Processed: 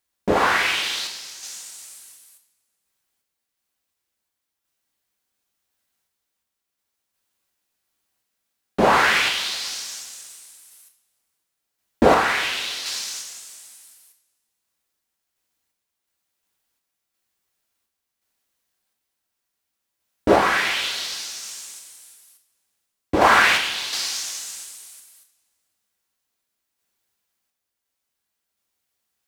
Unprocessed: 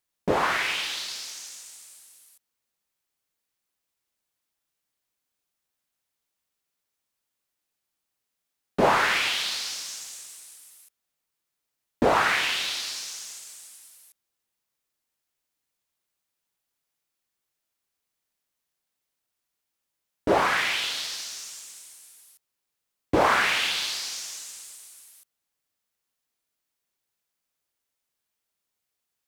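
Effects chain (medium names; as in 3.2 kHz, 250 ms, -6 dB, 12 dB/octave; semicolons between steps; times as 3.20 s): random-step tremolo 2.8 Hz; two-slope reverb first 0.47 s, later 1.9 s, from -18 dB, DRR 4 dB; trim +5.5 dB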